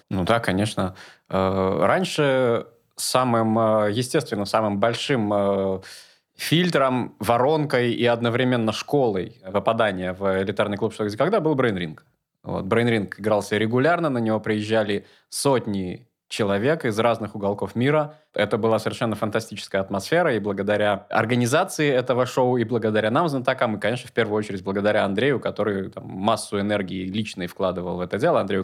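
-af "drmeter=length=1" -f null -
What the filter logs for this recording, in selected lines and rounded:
Channel 1: DR: 13.2
Overall DR: 13.2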